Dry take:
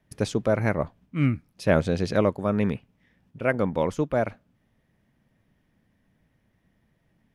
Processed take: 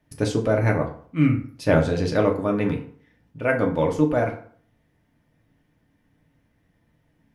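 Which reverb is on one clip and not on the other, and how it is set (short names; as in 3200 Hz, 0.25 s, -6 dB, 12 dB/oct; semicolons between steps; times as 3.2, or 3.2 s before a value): FDN reverb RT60 0.52 s, low-frequency decay 0.95×, high-frequency decay 0.65×, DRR 1 dB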